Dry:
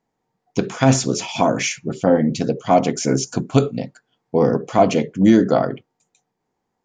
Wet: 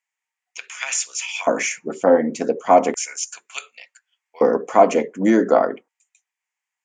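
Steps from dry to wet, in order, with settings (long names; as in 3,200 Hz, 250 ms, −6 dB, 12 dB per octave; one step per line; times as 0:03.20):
auto-filter high-pass square 0.34 Hz 240–2,700 Hz
octave-band graphic EQ 125/250/500/1,000/2,000/4,000/8,000 Hz −9/−5/+6/+8/+8/−9/+11 dB
level −6 dB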